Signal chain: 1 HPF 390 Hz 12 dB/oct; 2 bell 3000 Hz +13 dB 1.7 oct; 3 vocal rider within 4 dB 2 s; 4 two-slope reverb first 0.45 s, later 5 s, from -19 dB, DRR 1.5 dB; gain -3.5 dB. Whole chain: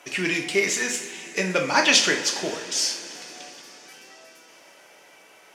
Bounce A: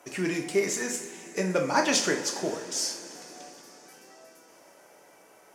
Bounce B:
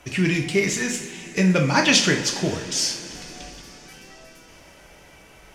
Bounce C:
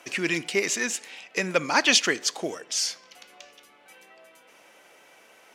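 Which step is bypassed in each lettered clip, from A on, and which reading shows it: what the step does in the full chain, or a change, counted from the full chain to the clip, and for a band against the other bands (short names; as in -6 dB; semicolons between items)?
2, 4 kHz band -7.5 dB; 1, 125 Hz band +14.0 dB; 4, momentary loudness spread change -8 LU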